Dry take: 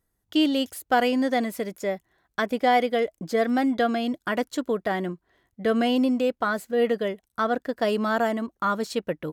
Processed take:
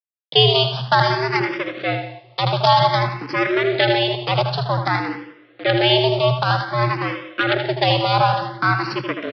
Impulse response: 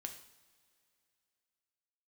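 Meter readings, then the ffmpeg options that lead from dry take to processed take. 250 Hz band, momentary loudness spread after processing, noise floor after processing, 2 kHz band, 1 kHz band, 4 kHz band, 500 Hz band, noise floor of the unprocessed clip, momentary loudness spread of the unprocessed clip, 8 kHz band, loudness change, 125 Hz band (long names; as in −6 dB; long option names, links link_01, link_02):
−2.0 dB, 9 LU, −52 dBFS, +8.0 dB, +7.5 dB, +14.5 dB, +4.5 dB, −78 dBFS, 8 LU, can't be measured, +6.5 dB, +20.0 dB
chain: -filter_complex "[0:a]highpass=frequency=940:poles=1,equalizer=frequency=1300:width_type=o:width=2.5:gain=-7,acrusher=bits=5:dc=4:mix=0:aa=0.000001,afreqshift=120,aecho=1:1:177:0.15,asplit=2[link_01][link_02];[1:a]atrim=start_sample=2205,lowpass=5200,adelay=79[link_03];[link_02][link_03]afir=irnorm=-1:irlink=0,volume=-3dB[link_04];[link_01][link_04]amix=inputs=2:normalize=0,aresample=11025,aresample=44100,alimiter=level_in=22dB:limit=-1dB:release=50:level=0:latency=1,asplit=2[link_05][link_06];[link_06]afreqshift=0.53[link_07];[link_05][link_07]amix=inputs=2:normalize=1,volume=-1dB"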